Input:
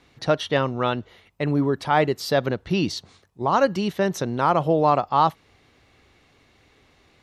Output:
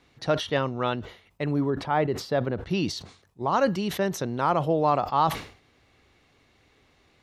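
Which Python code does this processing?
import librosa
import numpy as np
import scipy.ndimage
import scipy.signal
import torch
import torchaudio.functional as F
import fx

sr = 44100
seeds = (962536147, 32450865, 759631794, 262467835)

y = fx.lowpass(x, sr, hz=1600.0, slope=6, at=(1.7, 2.66))
y = fx.sustainer(y, sr, db_per_s=120.0)
y = y * librosa.db_to_amplitude(-4.0)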